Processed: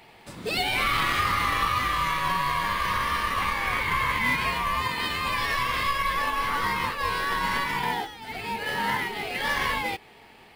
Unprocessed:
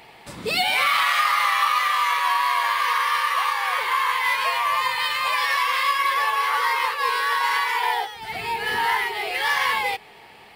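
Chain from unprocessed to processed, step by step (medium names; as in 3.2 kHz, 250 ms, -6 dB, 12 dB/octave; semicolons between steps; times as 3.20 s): 3.40–4.52 s: peaking EQ 2.2 kHz +6.5 dB 0.26 oct; in parallel at -9 dB: sample-and-hold 39×; on the sum: trim -5 dB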